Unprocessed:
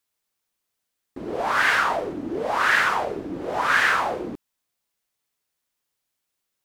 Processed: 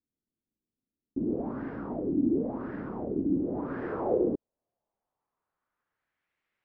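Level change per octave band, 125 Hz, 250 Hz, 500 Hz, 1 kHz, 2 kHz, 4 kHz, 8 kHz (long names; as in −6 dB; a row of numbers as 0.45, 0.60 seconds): +2.5 dB, +5.0 dB, −2.5 dB, −18.5 dB, −29.0 dB, below −40 dB, below −40 dB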